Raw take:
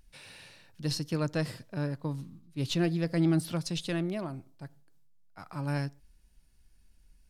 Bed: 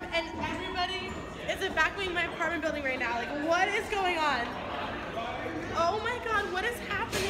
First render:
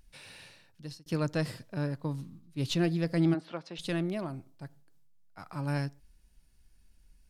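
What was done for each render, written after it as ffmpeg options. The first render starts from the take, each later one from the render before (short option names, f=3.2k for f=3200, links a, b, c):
-filter_complex "[0:a]asplit=3[a][b][c];[a]afade=t=out:st=3.33:d=0.02[d];[b]highpass=380,lowpass=2.3k,afade=t=in:st=3.33:d=0.02,afade=t=out:st=3.78:d=0.02[e];[c]afade=t=in:st=3.78:d=0.02[f];[d][e][f]amix=inputs=3:normalize=0,asplit=2[g][h];[g]atrim=end=1.06,asetpts=PTS-STARTPTS,afade=t=out:st=0.43:d=0.63[i];[h]atrim=start=1.06,asetpts=PTS-STARTPTS,afade=t=in:d=0.004:c=hsin[j];[i][j]concat=n=2:v=0:a=1"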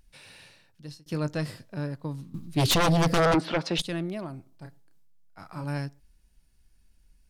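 -filter_complex "[0:a]asettb=1/sr,asplit=3[a][b][c];[a]atrim=end=0.864[d];[b]atrim=start=0.86:end=1.8,asetpts=PTS-STARTPTS,afade=t=in:d=0.004:c=qsin,afade=t=out:st=0.936:d=0.004:c=qsin,asplit=2[e][f];[f]adelay=20,volume=-11.5dB[g];[e][g]amix=inputs=2:normalize=0,atrim=end_sample=41454[h];[c]atrim=start=1.796[i];[d][h]acrossfade=d=0.004:c1=hsin:c2=qsin[j];[j][i]acrossfade=d=0.004:c1=qsin:c2=hsin,asettb=1/sr,asplit=3[k][l][m];[k]atrim=end=2.344[n];[l]atrim=start=2.34:end=3.82,asetpts=PTS-STARTPTS,afade=t=in:d=0.004:c=qsin,afade=t=out:st=1.476:d=0.004:c=qsin,aeval=exprs='0.126*sin(PI/2*3.98*val(0)/0.126)':c=same[o];[m]atrim=start=3.816[p];[n][o]acrossfade=d=0.004:c1=hsin:c2=qsin[q];[q][p]acrossfade=d=0.004:c1=qsin:c2=hsin,asettb=1/sr,asplit=3[r][s][t];[r]atrim=end=4.494[u];[s]atrim=start=4.49:end=5.64,asetpts=PTS-STARTPTS,afade=t=in:d=0.004:c=qsin,afade=t=out:st=1.146:d=0.004:c=qsin,asplit=2[v][w];[w]adelay=31,volume=-5.5dB[x];[v][x]amix=inputs=2:normalize=0,atrim=end_sample=50715[y];[t]atrim=start=5.636[z];[u][y]acrossfade=d=0.004:c1=hsin:c2=qsin[aa];[aa][z]acrossfade=d=0.004:c1=qsin:c2=hsin"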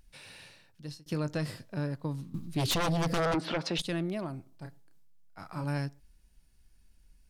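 -af "alimiter=limit=-21.5dB:level=0:latency=1:release=52,acompressor=threshold=-28dB:ratio=2.5"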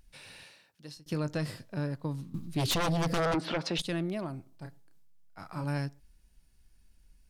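-filter_complex "[0:a]asettb=1/sr,asplit=3[a][b][c];[a]atrim=end=0.434[d];[b]atrim=start=0.43:end=0.97,asetpts=PTS-STARTPTS,afade=t=in:d=0.004:c=qsin,afade=t=out:st=0.536:d=0.004:c=qsin,highpass=f=330:p=1[e];[c]atrim=start=0.966[f];[d][e]acrossfade=d=0.004:c1=hsin:c2=qsin[g];[g][f]acrossfade=d=0.004:c1=qsin:c2=hsin"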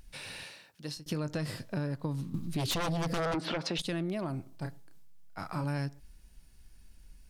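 -filter_complex "[0:a]asplit=2[a][b];[b]alimiter=level_in=9.5dB:limit=-24dB:level=0:latency=1:release=223,volume=-9.5dB,volume=1.5dB[c];[a][c]amix=inputs=2:normalize=0,acompressor=threshold=-30dB:ratio=6"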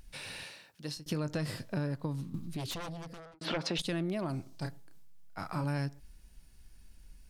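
-filter_complex "[0:a]asettb=1/sr,asplit=3[a][b][c];[a]atrim=end=4.294[d];[b]atrim=start=4.29:end=4.69,asetpts=PTS-STARTPTS,afade=t=in:d=0.004:c=qsin,afade=t=out:st=0.396:d=0.004:c=qsin,equalizer=f=5.4k:w=0.84:g=9[e];[c]atrim=start=4.686[f];[d][e]acrossfade=d=0.004:c1=hsin:c2=qsin[g];[g][f]acrossfade=d=0.004:c1=qsin:c2=hsin,asplit=2[h][i];[h]atrim=end=3.41,asetpts=PTS-STARTPTS,afade=t=out:st=1.86:d=1.55[j];[i]atrim=start=3.41,asetpts=PTS-STARTPTS,afade=t=in:d=0.004:c=hsin[k];[j][k]concat=n=2:v=0:a=1"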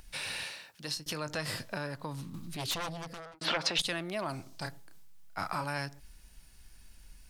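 -filter_complex "[0:a]acrossover=split=630[a][b];[a]alimiter=level_in=12dB:limit=-24dB:level=0:latency=1,volume=-12dB[c];[b]acontrast=63[d];[c][d]amix=inputs=2:normalize=0"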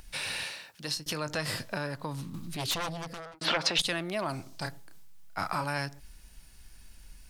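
-af "volume=3dB"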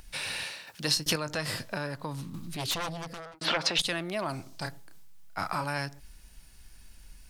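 -filter_complex "[0:a]asettb=1/sr,asplit=3[a][b][c];[a]atrim=end=0.674[d];[b]atrim=start=0.67:end=1.16,asetpts=PTS-STARTPTS,afade=t=in:d=0.004:c=qsin,afade=t=out:st=0.486:d=0.004:c=qsin,acontrast=75[e];[c]atrim=start=1.156[f];[d][e]acrossfade=d=0.004:c1=hsin:c2=qsin[g];[g][f]acrossfade=d=0.004:c1=qsin:c2=hsin"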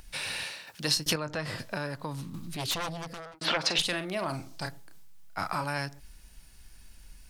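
-filter_complex "[0:a]asplit=3[a][b][c];[a]afade=t=out:st=1.13:d=0.02[d];[b]lowpass=f=2.4k:p=1,afade=t=in:st=1.13:d=0.02,afade=t=out:st=1.58:d=0.02[e];[c]afade=t=in:st=1.58:d=0.02[f];[d][e][f]amix=inputs=3:normalize=0,asettb=1/sr,asplit=3[g][h][i];[g]atrim=end=3.594[j];[h]atrim=start=3.59:end=4.66,asetpts=PTS-STARTPTS,afade=t=in:d=0.004:c=qsin,afade=t=out:st=1.066:d=0.004:c=qsin,asplit=2[k][l];[l]adelay=44,volume=-10dB[m];[k][m]amix=inputs=2:normalize=0,atrim=end_sample=47187[n];[i]atrim=start=4.656[o];[j][n]acrossfade=d=0.004:c1=hsin:c2=qsin[p];[p][o]acrossfade=d=0.004:c1=qsin:c2=hsin"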